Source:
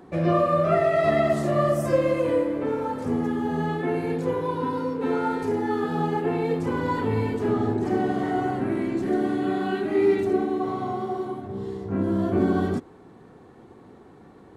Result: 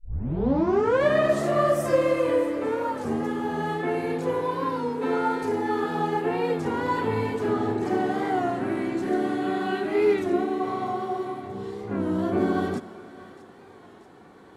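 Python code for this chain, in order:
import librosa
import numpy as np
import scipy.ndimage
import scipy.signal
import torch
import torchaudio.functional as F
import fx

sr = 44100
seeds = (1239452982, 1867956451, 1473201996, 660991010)

p1 = fx.tape_start_head(x, sr, length_s=1.27)
p2 = fx.low_shelf(p1, sr, hz=280.0, db=-9.0)
p3 = p2 + fx.echo_thinned(p2, sr, ms=635, feedback_pct=75, hz=1000.0, wet_db=-16.5, dry=0)
p4 = fx.rev_plate(p3, sr, seeds[0], rt60_s=3.3, hf_ratio=0.85, predelay_ms=0, drr_db=14.5)
p5 = fx.record_warp(p4, sr, rpm=33.33, depth_cents=100.0)
y = F.gain(torch.from_numpy(p5), 2.0).numpy()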